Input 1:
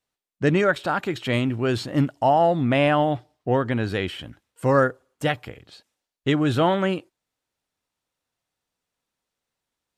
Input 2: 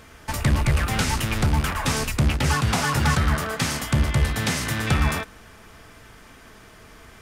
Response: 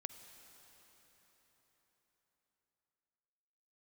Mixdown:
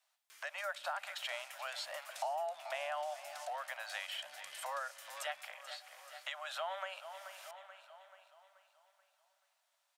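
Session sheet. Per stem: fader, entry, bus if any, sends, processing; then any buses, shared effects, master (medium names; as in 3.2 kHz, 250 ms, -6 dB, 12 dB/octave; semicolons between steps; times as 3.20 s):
+2.0 dB, 0.00 s, send -7.5 dB, echo send -15 dB, compression, threshold -25 dBFS, peak gain reduction 11 dB; steep high-pass 590 Hz 96 dB/octave
-1.0 dB, 0.30 s, no send, no echo send, Bessel high-pass 2 kHz, order 2; treble shelf 4 kHz +7.5 dB; compression 4:1, threshold -35 dBFS, peak gain reduction 12.5 dB; auto duck -10 dB, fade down 0.45 s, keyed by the first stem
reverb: on, RT60 4.7 s, pre-delay 43 ms
echo: feedback delay 432 ms, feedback 46%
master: compression 2:1, threshold -47 dBFS, peak gain reduction 14 dB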